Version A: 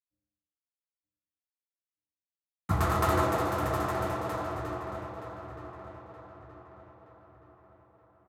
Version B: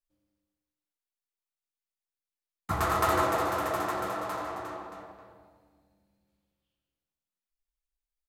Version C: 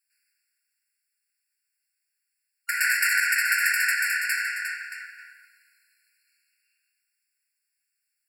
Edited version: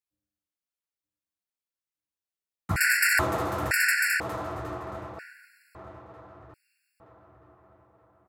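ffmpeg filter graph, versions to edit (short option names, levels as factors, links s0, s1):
-filter_complex "[2:a]asplit=4[s0][s1][s2][s3];[0:a]asplit=5[s4][s5][s6][s7][s8];[s4]atrim=end=2.762[s9];[s0]atrim=start=2.758:end=3.192[s10];[s5]atrim=start=3.188:end=3.712[s11];[s1]atrim=start=3.708:end=4.202[s12];[s6]atrim=start=4.198:end=5.192[s13];[s2]atrim=start=5.188:end=5.752[s14];[s7]atrim=start=5.748:end=6.542[s15];[s3]atrim=start=6.538:end=7.002[s16];[s8]atrim=start=6.998[s17];[s9][s10]acrossfade=d=0.004:c1=hsin:c2=hsin[s18];[s18][s11]acrossfade=d=0.004:c1=hsin:c2=hsin[s19];[s19][s12]acrossfade=d=0.004:c1=hsin:c2=hsin[s20];[s20][s13]acrossfade=d=0.004:c1=hsin:c2=hsin[s21];[s21][s14]acrossfade=d=0.004:c1=hsin:c2=hsin[s22];[s22][s15]acrossfade=d=0.004:c1=hsin:c2=hsin[s23];[s23][s16]acrossfade=d=0.004:c1=hsin:c2=hsin[s24];[s24][s17]acrossfade=d=0.004:c1=hsin:c2=hsin"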